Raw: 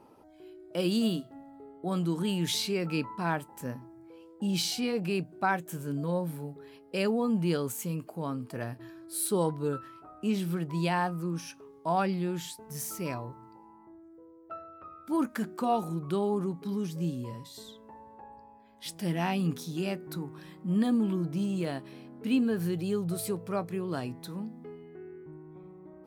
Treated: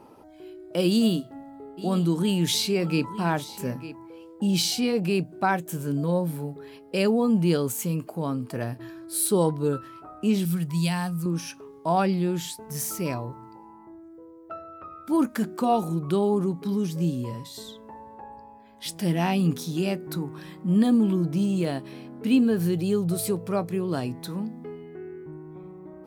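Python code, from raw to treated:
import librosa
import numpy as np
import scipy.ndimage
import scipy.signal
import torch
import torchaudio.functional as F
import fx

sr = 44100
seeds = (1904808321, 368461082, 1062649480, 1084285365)

y = fx.echo_single(x, sr, ms=903, db=-16.0, at=(1.77, 4.06), fade=0.02)
y = fx.curve_eq(y, sr, hz=(200.0, 320.0, 840.0, 4500.0, 9400.0), db=(0, -13, -9, 2, 7), at=(10.45, 11.26))
y = fx.dynamic_eq(y, sr, hz=1500.0, q=0.79, threshold_db=-46.0, ratio=4.0, max_db=-4)
y = y * librosa.db_to_amplitude(6.5)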